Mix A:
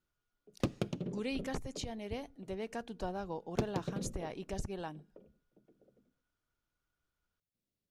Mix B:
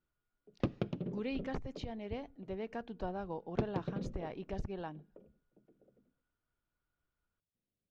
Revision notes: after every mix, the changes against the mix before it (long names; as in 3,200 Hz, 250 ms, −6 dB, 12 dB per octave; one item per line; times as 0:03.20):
master: add high-frequency loss of the air 240 metres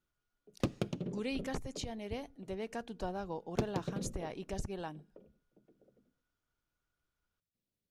master: remove high-frequency loss of the air 240 metres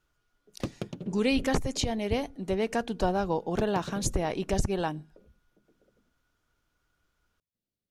speech +12.0 dB
background: send −6.5 dB